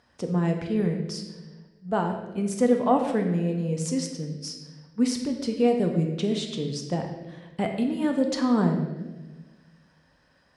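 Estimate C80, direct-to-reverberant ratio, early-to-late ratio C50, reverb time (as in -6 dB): 7.5 dB, 3.0 dB, 6.0 dB, 1.3 s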